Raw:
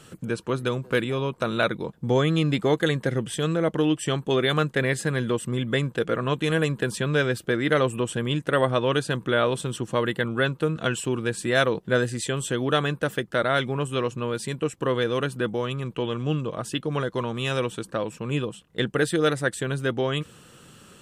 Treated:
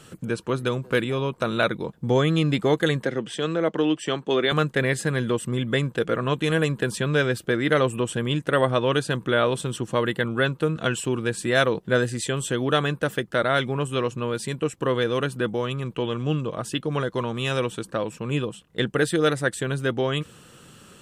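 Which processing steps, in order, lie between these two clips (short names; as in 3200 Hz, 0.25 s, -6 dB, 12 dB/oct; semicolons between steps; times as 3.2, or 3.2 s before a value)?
3.05–4.52 three-band isolator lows -16 dB, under 180 Hz, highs -19 dB, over 7300 Hz; gain +1 dB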